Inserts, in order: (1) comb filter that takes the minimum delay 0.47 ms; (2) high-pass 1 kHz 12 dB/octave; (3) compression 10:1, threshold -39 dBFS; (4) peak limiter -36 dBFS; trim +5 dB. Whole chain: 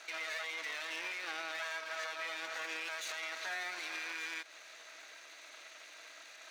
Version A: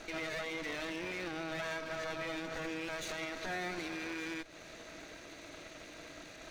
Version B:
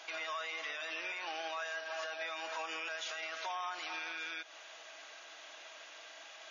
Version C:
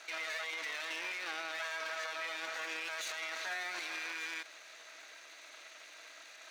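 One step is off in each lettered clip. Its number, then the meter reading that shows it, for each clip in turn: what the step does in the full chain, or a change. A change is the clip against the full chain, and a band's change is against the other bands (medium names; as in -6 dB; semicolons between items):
2, 250 Hz band +18.5 dB; 1, 1 kHz band +4.0 dB; 3, mean gain reduction 5.5 dB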